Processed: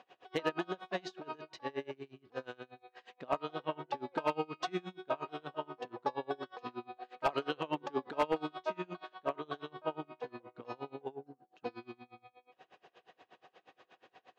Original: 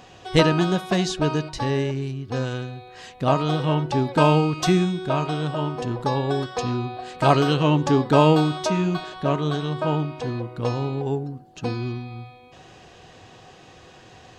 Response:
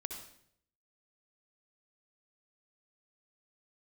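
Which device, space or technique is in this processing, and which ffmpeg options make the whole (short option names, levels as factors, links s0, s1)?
helicopter radio: -af "highpass=390,lowpass=3000,aeval=exprs='val(0)*pow(10,-28*(0.5-0.5*cos(2*PI*8.4*n/s))/20)':c=same,asoftclip=type=hard:threshold=0.168,volume=0.473"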